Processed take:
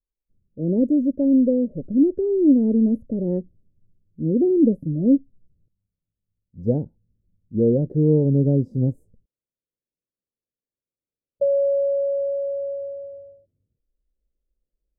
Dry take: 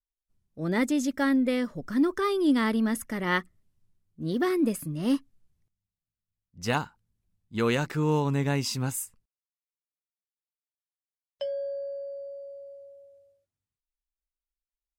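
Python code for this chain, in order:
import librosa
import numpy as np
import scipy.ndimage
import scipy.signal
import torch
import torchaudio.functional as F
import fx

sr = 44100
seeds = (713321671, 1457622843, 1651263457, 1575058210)

y = fx.rider(x, sr, range_db=10, speed_s=2.0)
y = scipy.signal.sosfilt(scipy.signal.ellip(4, 1.0, 50, 550.0, 'lowpass', fs=sr, output='sos'), y)
y = F.gain(torch.from_numpy(y), 9.0).numpy()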